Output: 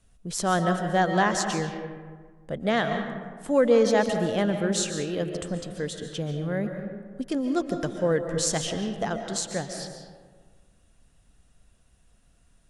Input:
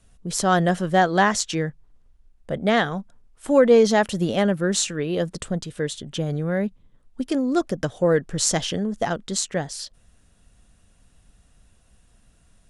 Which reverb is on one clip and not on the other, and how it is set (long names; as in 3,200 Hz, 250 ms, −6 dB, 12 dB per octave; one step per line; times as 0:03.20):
comb and all-pass reverb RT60 1.6 s, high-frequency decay 0.45×, pre-delay 100 ms, DRR 6 dB
level −5 dB